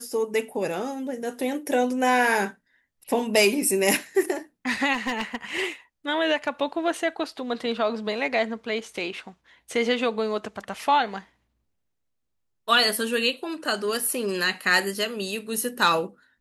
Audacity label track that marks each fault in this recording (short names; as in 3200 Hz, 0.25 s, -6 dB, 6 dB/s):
4.930000	5.360000	clipped -20.5 dBFS